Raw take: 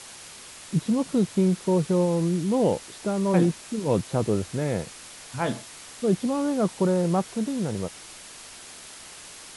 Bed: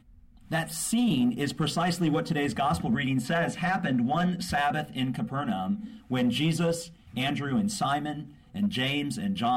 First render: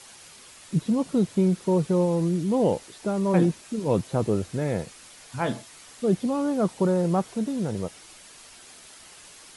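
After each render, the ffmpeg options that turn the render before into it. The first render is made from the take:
-af "afftdn=nr=6:nf=-44"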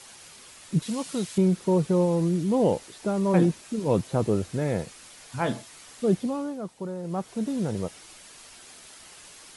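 -filter_complex "[0:a]asettb=1/sr,asplit=3[a][b][c];[a]atrim=end=0.824[d];[b]atrim=start=0.82:end=1.38,asetpts=PTS-STARTPTS,afade=t=in:d=0.004:c=qsin,afade=t=out:st=0.556:d=0.004:c=qsin,tiltshelf=f=1.1k:g=-8[e];[c]atrim=start=1.376[f];[d][e]acrossfade=d=0.004:c1=hsin:c2=qsin[g];[g][f]acrossfade=d=0.004:c1=qsin:c2=hsin,asplit=3[h][i][j];[h]atrim=end=6.61,asetpts=PTS-STARTPTS,afade=t=out:st=6.11:d=0.5:silence=0.266073[k];[i]atrim=start=6.61:end=7.02,asetpts=PTS-STARTPTS,volume=-11.5dB[l];[j]atrim=start=7.02,asetpts=PTS-STARTPTS,afade=t=in:d=0.5:silence=0.266073[m];[k][l][m]concat=n=3:v=0:a=1"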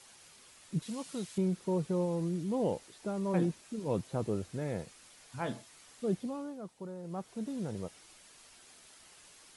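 -af "volume=-9.5dB"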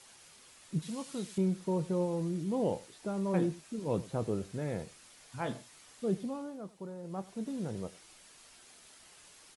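-filter_complex "[0:a]asplit=2[a][b];[b]adelay=26,volume=-14dB[c];[a][c]amix=inputs=2:normalize=0,aecho=1:1:95:0.1"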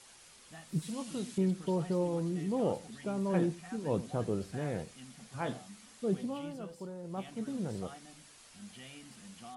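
-filter_complex "[1:a]volume=-23dB[a];[0:a][a]amix=inputs=2:normalize=0"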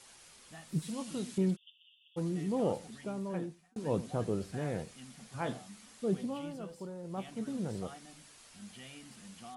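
-filter_complex "[0:a]asplit=3[a][b][c];[a]afade=t=out:st=1.55:d=0.02[d];[b]asuperpass=centerf=3100:order=20:qfactor=3.2,afade=t=in:st=1.55:d=0.02,afade=t=out:st=2.16:d=0.02[e];[c]afade=t=in:st=2.16:d=0.02[f];[d][e][f]amix=inputs=3:normalize=0,asplit=2[g][h];[g]atrim=end=3.76,asetpts=PTS-STARTPTS,afade=t=out:st=2.83:d=0.93[i];[h]atrim=start=3.76,asetpts=PTS-STARTPTS,afade=t=in:d=0.004:c=hsin[j];[i][j]concat=n=2:v=0:a=1"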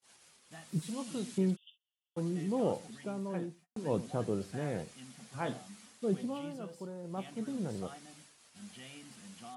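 -af "highpass=96,agate=range=-32dB:threshold=-56dB:ratio=16:detection=peak"

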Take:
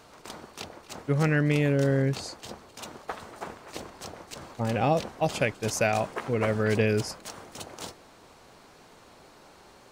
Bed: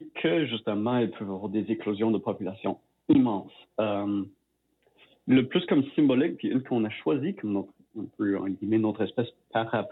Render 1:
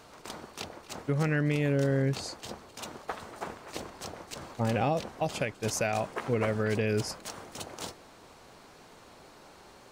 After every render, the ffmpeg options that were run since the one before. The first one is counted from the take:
-af "alimiter=limit=-18.5dB:level=0:latency=1:release=319"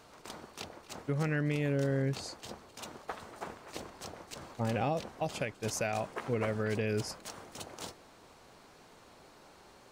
-af "volume=-4dB"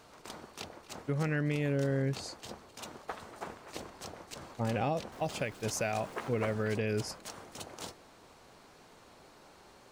-filter_complex "[0:a]asettb=1/sr,asplit=3[a][b][c];[a]atrim=end=5.124[d];[b]atrim=start=5.12:end=6.73,asetpts=PTS-STARTPTS,afade=t=in:d=0.004:c=qsin,afade=t=out:st=1.606:d=0.004:c=qsin,aeval=exprs='val(0)+0.5*0.00299*sgn(val(0))':c=same[e];[c]atrim=start=6.726[f];[d][e]acrossfade=d=0.004:c1=hsin:c2=qsin[g];[g][f]acrossfade=d=0.004:c1=qsin:c2=hsin"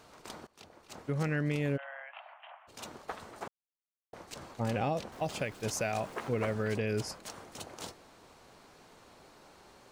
-filter_complex "[0:a]asplit=3[a][b][c];[a]afade=t=out:st=1.76:d=0.02[d];[b]asuperpass=centerf=1400:order=20:qfactor=0.56,afade=t=in:st=1.76:d=0.02,afade=t=out:st=2.67:d=0.02[e];[c]afade=t=in:st=2.67:d=0.02[f];[d][e][f]amix=inputs=3:normalize=0,asplit=4[g][h][i][j];[g]atrim=end=0.47,asetpts=PTS-STARTPTS,afade=t=out:st=0.466:d=0.004:c=hsin:silence=0.1[k];[h]atrim=start=0.47:end=3.48,asetpts=PTS-STARTPTS,afade=t=in:d=0.7:silence=0.1,afade=t=out:st=3.006:d=0.004:c=hsin[l];[i]atrim=start=3.48:end=4.13,asetpts=PTS-STARTPTS,volume=0[m];[j]atrim=start=4.13,asetpts=PTS-STARTPTS,afade=t=in:d=0.004:c=hsin[n];[k][l][m][n]concat=n=4:v=0:a=1"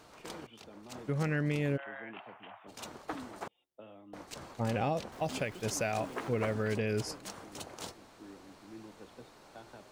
-filter_complex "[1:a]volume=-25dB[a];[0:a][a]amix=inputs=2:normalize=0"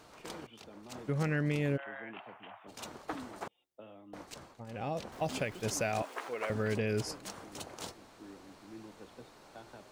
-filter_complex "[0:a]asettb=1/sr,asplit=3[a][b][c];[a]atrim=end=6.024[d];[b]atrim=start=6.02:end=6.5,asetpts=PTS-STARTPTS,afade=t=in:d=0.004:c=qsin,afade=t=out:st=0.476:d=0.004:c=qsin,highpass=590[e];[c]atrim=start=6.496[f];[d][e]acrossfade=d=0.004:c1=hsin:c2=qsin[g];[g][f]acrossfade=d=0.004:c1=qsin:c2=hsin,asplit=2[h][i];[h]atrim=end=4.66,asetpts=PTS-STARTPTS,afade=t=out:st=4.21:d=0.45:silence=0.141254[j];[i]atrim=start=4.66,asetpts=PTS-STARTPTS,afade=t=in:d=0.45:silence=0.141254[k];[j][k]concat=n=2:v=0:a=1"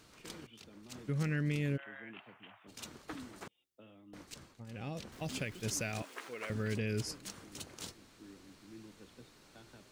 -af "equalizer=f=750:w=0.83:g=-11.5"

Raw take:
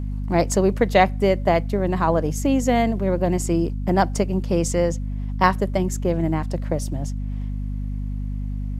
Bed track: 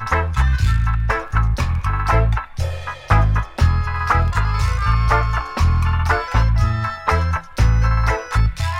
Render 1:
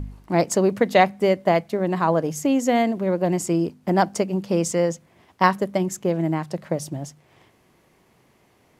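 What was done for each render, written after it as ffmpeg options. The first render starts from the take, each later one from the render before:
-af "bandreject=f=50:t=h:w=4,bandreject=f=100:t=h:w=4,bandreject=f=150:t=h:w=4,bandreject=f=200:t=h:w=4,bandreject=f=250:t=h:w=4"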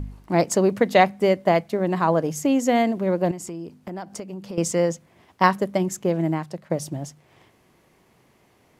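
-filter_complex "[0:a]asettb=1/sr,asplit=3[a][b][c];[a]atrim=end=3.314[d];[b]atrim=start=3.31:end=4.58,asetpts=PTS-STARTPTS,afade=t=in:d=0.004:c=qsin,afade=t=out:st=1.266:d=0.004:c=qsin,acompressor=threshold=-32dB:ratio=4:attack=3.2:release=140:knee=1:detection=peak[e];[c]atrim=start=4.576[f];[d][e]acrossfade=d=0.004:c1=hsin:c2=qsin[g];[g][f]acrossfade=d=0.004:c1=qsin:c2=hsin,asplit=2[h][i];[h]atrim=end=6.7,asetpts=PTS-STARTPTS,afade=t=out:st=6.29:d=0.41:silence=0.316228[j];[i]atrim=start=6.7,asetpts=PTS-STARTPTS,afade=t=in:d=0.004:c=hsin:silence=0.316228[k];[j][k]concat=n=2:v=0:a=1"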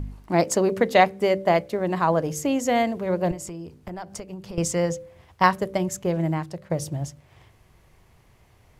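-af "asubboost=boost=10.5:cutoff=78,bandreject=f=64.37:t=h:w=4,bandreject=f=128.74:t=h:w=4,bandreject=f=193.11:t=h:w=4,bandreject=f=257.48:t=h:w=4,bandreject=f=321.85:t=h:w=4,bandreject=f=386.22:t=h:w=4,bandreject=f=450.59:t=h:w=4,bandreject=f=514.96:t=h:w=4,bandreject=f=579.33:t=h:w=4"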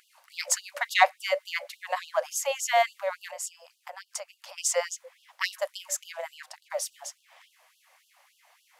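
-filter_complex "[0:a]asplit=2[a][b];[b]asoftclip=type=tanh:threshold=-16dB,volume=-8dB[c];[a][c]amix=inputs=2:normalize=0,afftfilt=real='re*gte(b*sr/1024,490*pow(2800/490,0.5+0.5*sin(2*PI*3.5*pts/sr)))':imag='im*gte(b*sr/1024,490*pow(2800/490,0.5+0.5*sin(2*PI*3.5*pts/sr)))':win_size=1024:overlap=0.75"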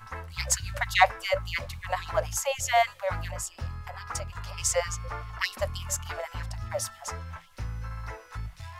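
-filter_complex "[1:a]volume=-20.5dB[a];[0:a][a]amix=inputs=2:normalize=0"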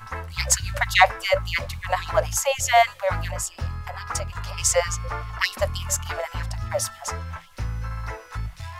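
-af "volume=6dB,alimiter=limit=-2dB:level=0:latency=1"

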